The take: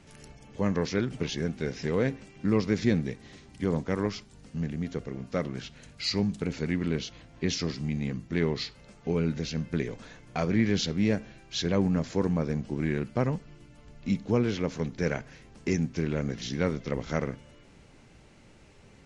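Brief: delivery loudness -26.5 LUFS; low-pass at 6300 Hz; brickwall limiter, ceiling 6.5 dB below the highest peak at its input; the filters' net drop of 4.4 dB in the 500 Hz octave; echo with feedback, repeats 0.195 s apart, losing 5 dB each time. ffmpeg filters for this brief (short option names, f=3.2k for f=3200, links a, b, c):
-af "lowpass=6.3k,equalizer=f=500:t=o:g=-5.5,alimiter=limit=-19.5dB:level=0:latency=1,aecho=1:1:195|390|585|780|975|1170|1365:0.562|0.315|0.176|0.0988|0.0553|0.031|0.0173,volume=5dB"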